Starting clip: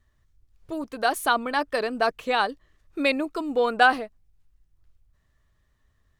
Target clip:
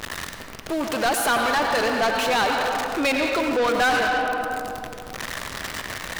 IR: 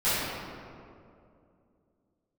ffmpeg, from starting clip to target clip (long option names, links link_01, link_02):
-filter_complex "[0:a]aeval=exprs='val(0)+0.5*0.0355*sgn(val(0))':channel_layout=same,asplit=2[link_01][link_02];[1:a]atrim=start_sample=2205,adelay=79[link_03];[link_02][link_03]afir=irnorm=-1:irlink=0,volume=-20.5dB[link_04];[link_01][link_04]amix=inputs=2:normalize=0,asplit=2[link_05][link_06];[link_06]highpass=frequency=720:poles=1,volume=26dB,asoftclip=type=tanh:threshold=-5dB[link_07];[link_05][link_07]amix=inputs=2:normalize=0,lowpass=frequency=6500:poles=1,volume=-6dB,volume=-8.5dB"